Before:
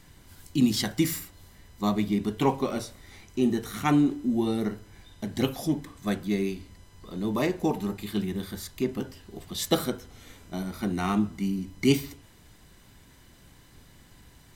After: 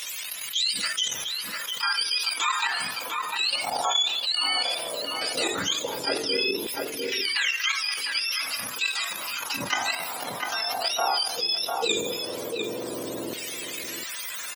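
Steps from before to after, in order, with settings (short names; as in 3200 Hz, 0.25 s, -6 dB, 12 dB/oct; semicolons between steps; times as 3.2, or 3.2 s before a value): spectrum mirrored in octaves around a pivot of 1000 Hz; level quantiser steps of 11 dB; notches 50/100/150/200/250/300/350/400/450 Hz; LFO high-pass saw down 0.15 Hz 350–2400 Hz; outdoor echo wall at 120 m, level -13 dB; fast leveller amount 70%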